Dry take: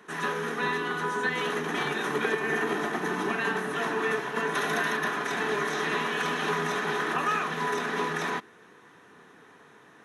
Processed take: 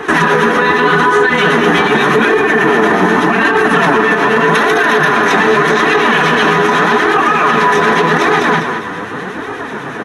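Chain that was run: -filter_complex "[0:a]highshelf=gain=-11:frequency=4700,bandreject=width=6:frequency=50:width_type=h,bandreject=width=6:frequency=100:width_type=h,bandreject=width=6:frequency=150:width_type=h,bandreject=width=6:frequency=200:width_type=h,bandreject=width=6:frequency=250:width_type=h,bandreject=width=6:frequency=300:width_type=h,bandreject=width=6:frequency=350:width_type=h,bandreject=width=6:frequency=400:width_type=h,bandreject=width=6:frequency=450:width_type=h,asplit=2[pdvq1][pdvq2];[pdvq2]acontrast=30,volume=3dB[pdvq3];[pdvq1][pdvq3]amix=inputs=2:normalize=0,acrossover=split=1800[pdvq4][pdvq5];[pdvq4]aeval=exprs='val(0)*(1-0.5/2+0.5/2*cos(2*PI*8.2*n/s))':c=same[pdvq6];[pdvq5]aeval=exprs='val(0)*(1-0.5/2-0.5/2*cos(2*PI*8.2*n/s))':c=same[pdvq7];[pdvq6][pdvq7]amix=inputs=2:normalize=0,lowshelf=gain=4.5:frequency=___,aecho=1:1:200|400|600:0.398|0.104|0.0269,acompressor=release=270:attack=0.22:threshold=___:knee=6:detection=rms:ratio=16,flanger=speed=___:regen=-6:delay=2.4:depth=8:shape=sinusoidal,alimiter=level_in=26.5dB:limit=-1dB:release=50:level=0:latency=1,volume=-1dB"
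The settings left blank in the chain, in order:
160, -21dB, 0.84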